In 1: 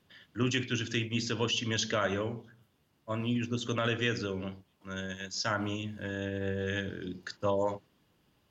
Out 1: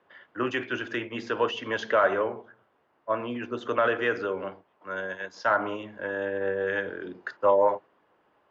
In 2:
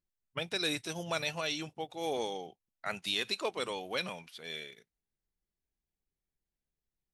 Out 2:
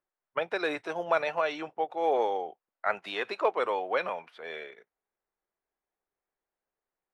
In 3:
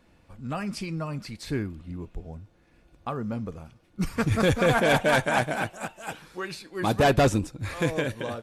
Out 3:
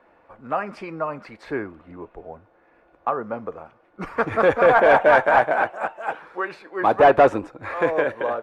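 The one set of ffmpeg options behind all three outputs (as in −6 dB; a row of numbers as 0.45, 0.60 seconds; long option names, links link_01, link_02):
-filter_complex "[0:a]acrossover=split=360 2000:gain=0.158 1 0.158[link_01][link_02][link_03];[link_01][link_02][link_03]amix=inputs=3:normalize=0,asplit=2[link_04][link_05];[link_05]highpass=frequency=720:poles=1,volume=10dB,asoftclip=type=tanh:threshold=-11.5dB[link_06];[link_04][link_06]amix=inputs=2:normalize=0,lowpass=frequency=1200:poles=1,volume=-6dB,volume=9dB"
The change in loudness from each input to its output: +5.0, +5.0, +6.0 LU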